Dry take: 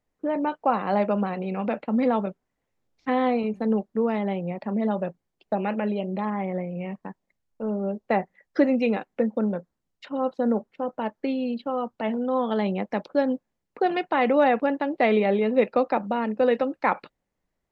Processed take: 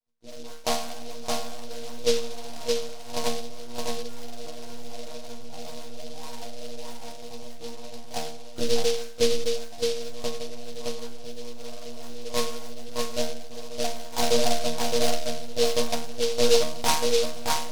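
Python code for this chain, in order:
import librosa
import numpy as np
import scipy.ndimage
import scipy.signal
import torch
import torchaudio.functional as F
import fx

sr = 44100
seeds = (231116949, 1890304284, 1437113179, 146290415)

p1 = fx.peak_eq(x, sr, hz=98.0, db=-9.0, octaves=2.4)
p2 = p1 + 0.92 * np.pad(p1, (int(3.8 * sr / 1000.0), 0))[:len(p1)]
p3 = fx.echo_diffused(p2, sr, ms=1516, feedback_pct=45, wet_db=-11.0)
p4 = fx.level_steps(p3, sr, step_db=18)
p5 = fx.lpc_monotone(p4, sr, seeds[0], pitch_hz=120.0, order=8)
p6 = fx.peak_eq(p5, sr, hz=950.0, db=9.0, octaves=2.9)
p7 = fx.resonator_bank(p6, sr, root=51, chord='fifth', decay_s=0.58)
p8 = p7 + fx.echo_single(p7, sr, ms=617, db=-3.0, dry=0)
p9 = fx.noise_mod_delay(p8, sr, seeds[1], noise_hz=4100.0, depth_ms=0.14)
y = p9 * librosa.db_to_amplitude(8.5)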